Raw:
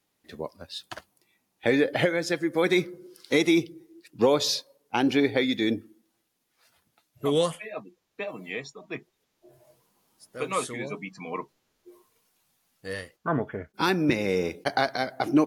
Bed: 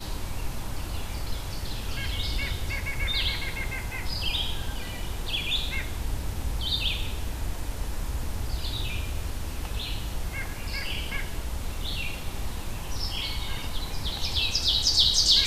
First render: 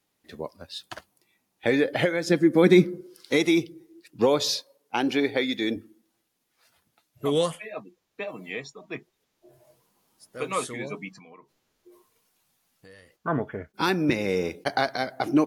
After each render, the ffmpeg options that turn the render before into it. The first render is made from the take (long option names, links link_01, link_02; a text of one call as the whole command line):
ffmpeg -i in.wav -filter_complex "[0:a]asettb=1/sr,asplit=3[link_01][link_02][link_03];[link_01]atrim=end=2.274[link_04];[link_02]atrim=start=2.27:end=3.01,asetpts=PTS-STARTPTS,afade=type=in:duration=0.004:curve=qsin,afade=type=out:start_time=0.736:duration=0.004:curve=qsin,equalizer=frequency=220:width_type=o:width=1.4:gain=14.5[link_05];[link_03]atrim=start=3.006[link_06];[link_04][link_05]acrossfade=duration=0.004:curve1=hsin:curve2=qsin[link_07];[link_07][link_06]acrossfade=duration=0.004:curve1=qsin:curve2=hsin,asettb=1/sr,asplit=3[link_08][link_09][link_10];[link_08]atrim=end=4.554[link_11];[link_09]atrim=start=4.55:end=5.76,asetpts=PTS-STARTPTS,afade=type=in:duration=0.004:curve=qsin,afade=type=out:start_time=1.206:duration=0.004:curve=qsin,highpass=frequency=230:poles=1[link_12];[link_10]atrim=start=5.756[link_13];[link_11][link_12]acrossfade=duration=0.004:curve1=hsin:curve2=qsin[link_14];[link_14][link_13]acrossfade=duration=0.004:curve1=qsin:curve2=hsin,asettb=1/sr,asplit=3[link_15][link_16][link_17];[link_15]atrim=end=11.184[link_18];[link_16]atrim=start=11.18:end=13.12,asetpts=PTS-STARTPTS,afade=type=in:duration=0.004:curve=qsin,afade=type=out:start_time=1.936:duration=0.004:curve=qsin,acompressor=threshold=-48dB:ratio=5:attack=3.2:release=140:knee=1:detection=peak[link_19];[link_17]atrim=start=13.116[link_20];[link_18][link_19]acrossfade=duration=0.004:curve1=hsin:curve2=qsin[link_21];[link_21][link_20]acrossfade=duration=0.004:curve1=qsin:curve2=hsin" out.wav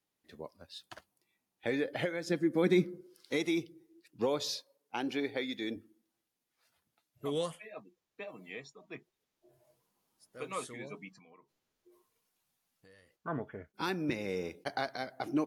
ffmpeg -i in.wav -af "volume=-10.5dB" out.wav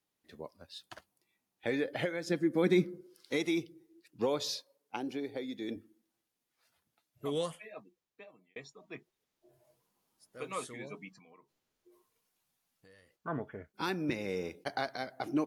ffmpeg -i in.wav -filter_complex "[0:a]asettb=1/sr,asplit=3[link_01][link_02][link_03];[link_01]atrim=end=4.964[link_04];[link_02]atrim=start=4.96:end=5.69,asetpts=PTS-STARTPTS,afade=type=in:duration=0.004:curve=qsin,afade=type=out:start_time=0.726:duration=0.004:curve=qsin,acrossover=split=830|5000[link_05][link_06][link_07];[link_05]acompressor=threshold=-34dB:ratio=4[link_08];[link_06]acompressor=threshold=-52dB:ratio=4[link_09];[link_07]acompressor=threshold=-59dB:ratio=4[link_10];[link_08][link_09][link_10]amix=inputs=3:normalize=0[link_11];[link_03]atrim=start=5.686[link_12];[link_04][link_11]acrossfade=duration=0.004:curve1=hsin:curve2=qsin[link_13];[link_13][link_12]acrossfade=duration=0.004:curve1=qsin:curve2=hsin,asplit=2[link_14][link_15];[link_14]atrim=end=8.56,asetpts=PTS-STARTPTS,afade=type=out:start_time=7.67:duration=0.89[link_16];[link_15]atrim=start=8.56,asetpts=PTS-STARTPTS,afade=type=in:duration=0.004:curve=hsin[link_17];[link_16][link_17]concat=n=2:v=0:a=1" out.wav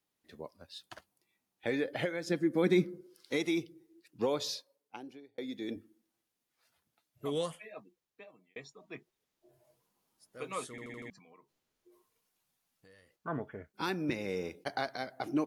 ffmpeg -i in.wav -filter_complex "[0:a]asplit=7[link_01][link_02][link_03][link_04][link_05][link_06][link_07];[link_01]atrim=end=5.38,asetpts=PTS-STARTPTS,afade=type=out:start_time=4.4:duration=0.98[link_08];[link_02]atrim=start=5.38:end=10.782,asetpts=PTS-STARTPTS,afade=type=in:duration=0.004:curve=hsin[link_09];[link_03]atrim=start=10.698:end=10.782[link_10];[link_04]atrim=start=10.698:end=10.782[link_11];[link_05]atrim=start=10.698:end=10.782[link_12];[link_06]atrim=start=10.698:end=10.782[link_13];[link_07]atrim=start=11.098[link_14];[link_08][link_09]concat=n=2:v=0:a=1[link_15];[link_15][link_10]acrossfade=duration=0.004:curve1=hsin:curve2=hsin[link_16];[link_16][link_11]acrossfade=duration=0.004:curve1=hsin:curve2=hsin[link_17];[link_17][link_12]acrossfade=duration=0.004:curve1=hsin:curve2=hsin[link_18];[link_18][link_13]acrossfade=duration=0.004:curve1=hsin:curve2=hsin[link_19];[link_19][link_14]acrossfade=duration=0.004:curve1=hsin:curve2=hsin" out.wav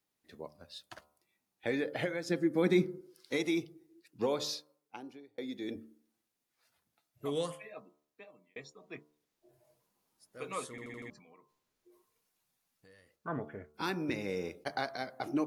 ffmpeg -i in.wav -af "equalizer=frequency=3100:width_type=o:width=0.22:gain=-2.5,bandreject=frequency=74.87:width_type=h:width=4,bandreject=frequency=149.74:width_type=h:width=4,bandreject=frequency=224.61:width_type=h:width=4,bandreject=frequency=299.48:width_type=h:width=4,bandreject=frequency=374.35:width_type=h:width=4,bandreject=frequency=449.22:width_type=h:width=4,bandreject=frequency=524.09:width_type=h:width=4,bandreject=frequency=598.96:width_type=h:width=4,bandreject=frequency=673.83:width_type=h:width=4,bandreject=frequency=748.7:width_type=h:width=4,bandreject=frequency=823.57:width_type=h:width=4,bandreject=frequency=898.44:width_type=h:width=4,bandreject=frequency=973.31:width_type=h:width=4,bandreject=frequency=1048.18:width_type=h:width=4,bandreject=frequency=1123.05:width_type=h:width=4,bandreject=frequency=1197.92:width_type=h:width=4,bandreject=frequency=1272.79:width_type=h:width=4,bandreject=frequency=1347.66:width_type=h:width=4,bandreject=frequency=1422.53:width_type=h:width=4" out.wav